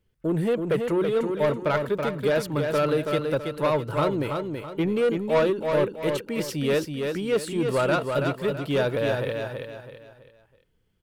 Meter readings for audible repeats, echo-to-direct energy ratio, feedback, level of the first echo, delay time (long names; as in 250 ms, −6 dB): 4, −4.5 dB, 36%, −5.0 dB, 328 ms